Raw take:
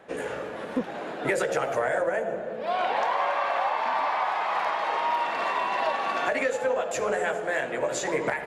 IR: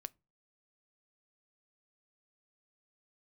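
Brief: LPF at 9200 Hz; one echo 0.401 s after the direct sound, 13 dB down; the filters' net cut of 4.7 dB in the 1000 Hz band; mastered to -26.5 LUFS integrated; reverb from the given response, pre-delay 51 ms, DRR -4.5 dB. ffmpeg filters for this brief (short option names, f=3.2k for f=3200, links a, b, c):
-filter_complex "[0:a]lowpass=9.2k,equalizer=f=1k:t=o:g=-6,aecho=1:1:401:0.224,asplit=2[a][b];[1:a]atrim=start_sample=2205,adelay=51[c];[b][c]afir=irnorm=-1:irlink=0,volume=9dB[d];[a][d]amix=inputs=2:normalize=0,volume=-3dB"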